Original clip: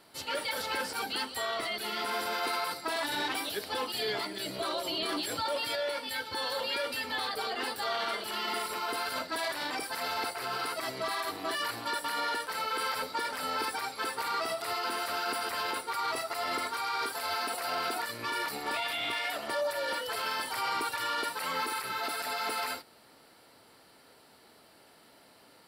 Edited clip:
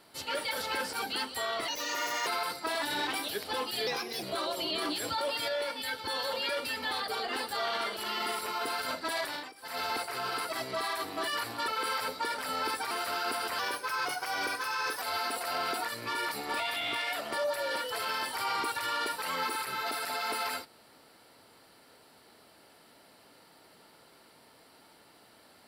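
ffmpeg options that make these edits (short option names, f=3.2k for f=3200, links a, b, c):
-filter_complex "[0:a]asplit=11[a][b][c][d][e][f][g][h][i][j][k];[a]atrim=end=1.684[l];[b]atrim=start=1.68:end=2.48,asetpts=PTS-STARTPTS,asetrate=59976,aresample=44100,atrim=end_sample=25941,asetpts=PTS-STARTPTS[m];[c]atrim=start=2.476:end=4.084[n];[d]atrim=start=4.08:end=4.5,asetpts=PTS-STARTPTS,asetrate=51597,aresample=44100[o];[e]atrim=start=4.496:end=9.81,asetpts=PTS-STARTPTS,afade=t=out:st=5.054:d=0.26:silence=0.0891251[p];[f]atrim=start=9.81:end=9.83,asetpts=PTS-STARTPTS,volume=-21dB[q];[g]atrim=start=9.83:end=11.952,asetpts=PTS-STARTPTS,afade=t=in:d=0.26:silence=0.0891251[r];[h]atrim=start=12.618:end=13.852[s];[i]atrim=start=14.918:end=15.604[t];[j]atrim=start=15.6:end=17.19,asetpts=PTS-STARTPTS,asetrate=48951,aresample=44100,atrim=end_sample=63170,asetpts=PTS-STARTPTS[u];[k]atrim=start=17.186[v];[l][m]acrossfade=d=0.004:c1=hsin:c2=hsin[w];[w][n]acrossfade=d=0.004:c1=hsin:c2=hsin[x];[x][o]acrossfade=d=0.004:c1=hsin:c2=hsin[y];[p][q][r]concat=n=3:v=0:a=1[z];[y][z]acrossfade=d=0.004:c1=hsin:c2=hsin[aa];[aa][s]acrossfade=d=0.004:c1=hsin:c2=hsin[ab];[ab][t]acrossfade=d=0.004:c1=hsin:c2=hsin[ac];[ac][u]acrossfade=d=0.004:c1=hsin:c2=hsin[ad];[ad][v]acrossfade=d=0.004:c1=hsin:c2=hsin"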